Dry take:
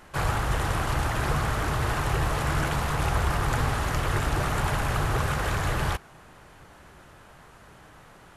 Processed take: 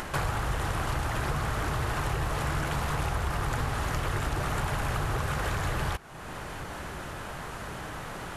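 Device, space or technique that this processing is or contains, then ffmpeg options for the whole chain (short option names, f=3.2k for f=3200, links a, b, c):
upward and downward compression: -af "acompressor=mode=upward:threshold=-38dB:ratio=2.5,acompressor=threshold=-36dB:ratio=4,volume=7.5dB"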